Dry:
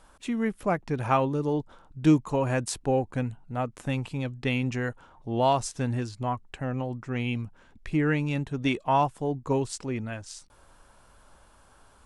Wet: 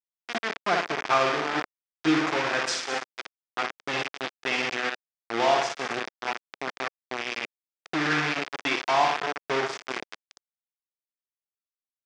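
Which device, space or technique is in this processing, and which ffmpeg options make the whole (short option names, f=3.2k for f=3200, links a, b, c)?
hand-held game console: -filter_complex "[0:a]highshelf=f=4.5k:g=5.5,aecho=1:1:5.7:0.46,asplit=3[a][b][c];[a]afade=t=out:st=2.65:d=0.02[d];[b]tiltshelf=f=1.1k:g=-7.5,afade=t=in:st=2.65:d=0.02,afade=t=out:st=3.24:d=0.02[e];[c]afade=t=in:st=3.24:d=0.02[f];[d][e][f]amix=inputs=3:normalize=0,aecho=1:1:60|120|180|240|300|360|420|480:0.631|0.372|0.22|0.13|0.0765|0.0451|0.0266|0.0157,acrusher=bits=3:mix=0:aa=0.000001,highpass=430,equalizer=f=550:t=q:w=4:g=-8,equalizer=f=920:t=q:w=4:g=-5,equalizer=f=2.9k:t=q:w=4:g=-4,equalizer=f=4.1k:t=q:w=4:g=-7,lowpass=f=4.7k:w=0.5412,lowpass=f=4.7k:w=1.3066,volume=2.5dB"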